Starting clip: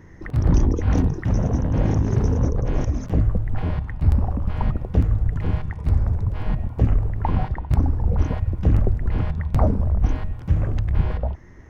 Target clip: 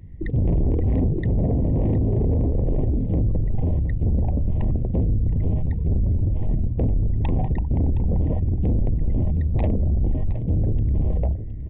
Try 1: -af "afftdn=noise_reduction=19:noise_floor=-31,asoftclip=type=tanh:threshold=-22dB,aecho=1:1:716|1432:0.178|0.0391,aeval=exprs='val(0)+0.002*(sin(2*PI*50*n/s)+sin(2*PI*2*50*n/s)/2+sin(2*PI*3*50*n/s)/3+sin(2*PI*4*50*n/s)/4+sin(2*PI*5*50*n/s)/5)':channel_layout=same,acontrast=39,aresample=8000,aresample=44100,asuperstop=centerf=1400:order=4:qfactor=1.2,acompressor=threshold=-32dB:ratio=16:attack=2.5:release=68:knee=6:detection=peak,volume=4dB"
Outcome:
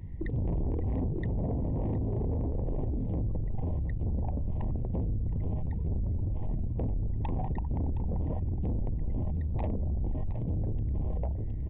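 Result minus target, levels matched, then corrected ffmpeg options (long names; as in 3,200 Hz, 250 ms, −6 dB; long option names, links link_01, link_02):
downward compressor: peak gain reduction +10.5 dB; 1,000 Hz band +5.0 dB
-af "afftdn=noise_reduction=19:noise_floor=-31,asoftclip=type=tanh:threshold=-22dB,aecho=1:1:716|1432:0.178|0.0391,aeval=exprs='val(0)+0.002*(sin(2*PI*50*n/s)+sin(2*PI*2*50*n/s)/2+sin(2*PI*3*50*n/s)/3+sin(2*PI*4*50*n/s)/4+sin(2*PI*5*50*n/s)/5)':channel_layout=same,acontrast=39,aresample=8000,aresample=44100,asuperstop=centerf=1400:order=4:qfactor=1.2,equalizer=frequency=910:width=2.4:gain=-8.5,acompressor=threshold=-20.5dB:ratio=16:attack=2.5:release=68:knee=6:detection=peak,volume=4dB"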